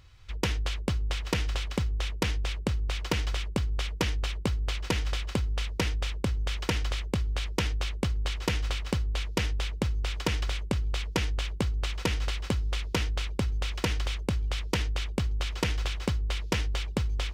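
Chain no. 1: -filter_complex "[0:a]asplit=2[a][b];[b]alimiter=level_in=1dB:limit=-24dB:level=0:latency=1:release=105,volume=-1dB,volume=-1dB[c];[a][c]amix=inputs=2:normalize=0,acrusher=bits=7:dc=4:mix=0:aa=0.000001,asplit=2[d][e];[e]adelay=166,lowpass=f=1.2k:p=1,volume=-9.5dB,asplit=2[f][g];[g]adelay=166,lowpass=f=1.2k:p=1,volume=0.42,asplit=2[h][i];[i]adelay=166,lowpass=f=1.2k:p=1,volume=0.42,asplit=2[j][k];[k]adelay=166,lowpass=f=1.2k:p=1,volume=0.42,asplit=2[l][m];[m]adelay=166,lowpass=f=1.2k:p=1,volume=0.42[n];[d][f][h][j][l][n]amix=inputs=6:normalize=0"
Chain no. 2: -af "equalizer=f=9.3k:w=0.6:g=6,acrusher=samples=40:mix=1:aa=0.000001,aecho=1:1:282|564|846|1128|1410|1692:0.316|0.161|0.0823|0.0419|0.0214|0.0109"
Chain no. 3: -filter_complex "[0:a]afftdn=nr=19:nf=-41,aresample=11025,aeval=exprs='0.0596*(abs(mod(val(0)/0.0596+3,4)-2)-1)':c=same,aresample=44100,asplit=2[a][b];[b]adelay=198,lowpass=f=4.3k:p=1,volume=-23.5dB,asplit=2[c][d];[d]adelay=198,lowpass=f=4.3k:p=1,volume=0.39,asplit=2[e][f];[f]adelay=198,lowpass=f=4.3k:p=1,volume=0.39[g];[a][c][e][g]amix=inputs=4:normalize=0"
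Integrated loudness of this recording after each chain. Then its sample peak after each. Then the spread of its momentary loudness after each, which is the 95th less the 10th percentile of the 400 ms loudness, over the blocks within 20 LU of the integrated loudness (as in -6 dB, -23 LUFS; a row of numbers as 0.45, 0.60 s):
-27.0, -31.5, -33.0 LUFS; -13.0, -14.0, -21.0 dBFS; 1, 1, 1 LU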